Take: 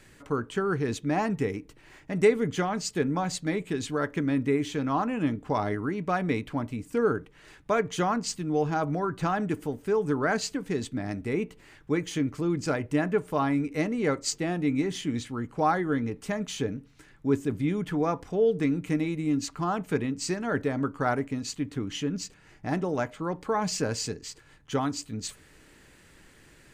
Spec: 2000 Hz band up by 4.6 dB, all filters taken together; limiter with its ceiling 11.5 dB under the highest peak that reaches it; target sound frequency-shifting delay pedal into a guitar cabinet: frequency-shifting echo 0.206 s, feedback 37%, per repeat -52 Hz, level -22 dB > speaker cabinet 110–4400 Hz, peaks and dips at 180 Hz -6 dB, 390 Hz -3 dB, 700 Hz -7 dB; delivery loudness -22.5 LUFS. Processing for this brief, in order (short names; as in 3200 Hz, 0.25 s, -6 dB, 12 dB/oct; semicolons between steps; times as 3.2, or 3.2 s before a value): bell 2000 Hz +6 dB; limiter -20.5 dBFS; frequency-shifting echo 0.206 s, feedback 37%, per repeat -52 Hz, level -22 dB; speaker cabinet 110–4400 Hz, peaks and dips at 180 Hz -6 dB, 390 Hz -3 dB, 700 Hz -7 dB; gain +10.5 dB